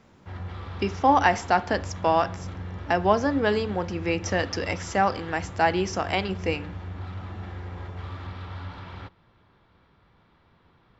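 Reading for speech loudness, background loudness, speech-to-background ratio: −25.0 LKFS, −37.5 LKFS, 12.5 dB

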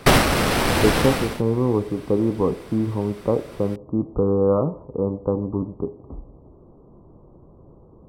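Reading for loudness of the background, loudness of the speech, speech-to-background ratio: −20.0 LKFS, −23.5 LKFS, −3.5 dB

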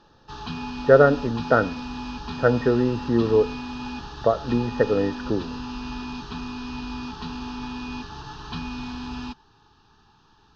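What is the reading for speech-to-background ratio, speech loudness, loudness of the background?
12.0 dB, −22.0 LKFS, −34.0 LKFS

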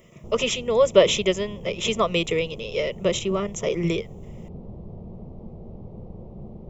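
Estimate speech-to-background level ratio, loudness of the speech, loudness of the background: 17.5 dB, −23.5 LKFS, −41.0 LKFS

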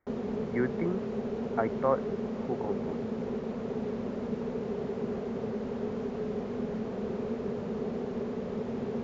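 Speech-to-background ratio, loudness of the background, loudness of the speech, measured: 0.5 dB, −34.5 LKFS, −34.0 LKFS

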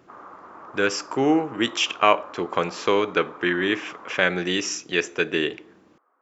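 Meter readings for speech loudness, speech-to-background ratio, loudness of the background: −23.5 LKFS, 20.0 dB, −43.5 LKFS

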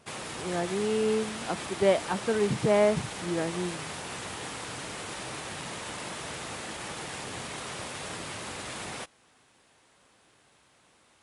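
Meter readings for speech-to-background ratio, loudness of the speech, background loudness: 8.5 dB, −28.5 LKFS, −37.0 LKFS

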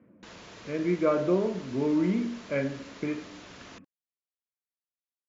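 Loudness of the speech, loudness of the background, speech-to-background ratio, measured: −29.0 LKFS, −47.5 LKFS, 18.5 dB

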